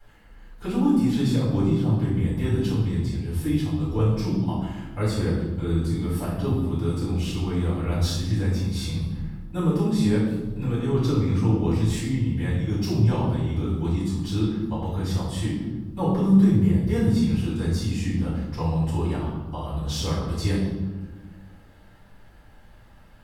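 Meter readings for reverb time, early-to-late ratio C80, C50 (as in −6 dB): 1.3 s, 4.0 dB, 1.0 dB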